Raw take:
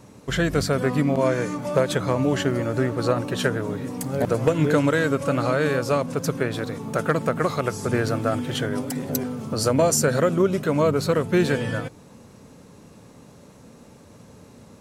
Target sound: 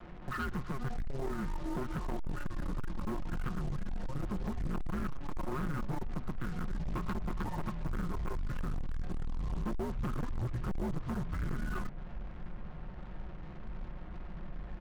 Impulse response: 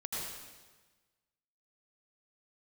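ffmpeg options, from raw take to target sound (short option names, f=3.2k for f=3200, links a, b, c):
-af "highpass=67,bandreject=f=1.1k:w=21,highpass=f=180:t=q:w=0.5412,highpass=f=180:t=q:w=1.307,lowpass=f=2.1k:t=q:w=0.5176,lowpass=f=2.1k:t=q:w=0.7071,lowpass=f=2.1k:t=q:w=1.932,afreqshift=-270,aecho=1:1:5.6:0.97,acompressor=threshold=-31dB:ratio=3,asubboost=boost=2.5:cutoff=160,asoftclip=type=tanh:threshold=-30dB,acrusher=bits=7:mix=0:aa=0.5,volume=-1dB"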